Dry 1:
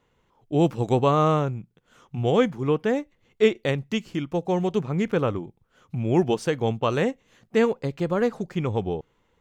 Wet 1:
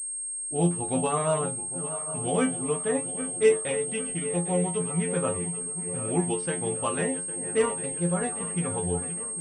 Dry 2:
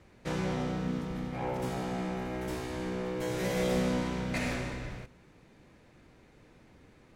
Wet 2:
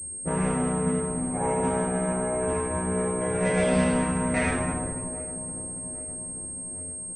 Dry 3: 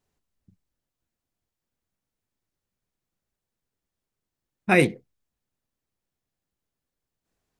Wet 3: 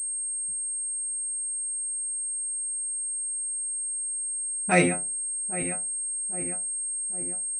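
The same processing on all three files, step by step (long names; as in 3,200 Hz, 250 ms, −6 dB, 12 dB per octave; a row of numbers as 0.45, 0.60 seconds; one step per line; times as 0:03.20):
feedback delay that plays each chunk backwards 402 ms, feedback 76%, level −12.5 dB
hum removal 139.5 Hz, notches 3
dynamic equaliser 340 Hz, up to −5 dB, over −38 dBFS, Q 3.5
stiff-string resonator 86 Hz, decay 0.3 s, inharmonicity 0.002
low-pass that shuts in the quiet parts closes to 480 Hz, open at −31.5 dBFS
switching amplifier with a slow clock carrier 8,500 Hz
loudness normalisation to −27 LKFS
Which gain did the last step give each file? +5.0, +18.0, +7.0 decibels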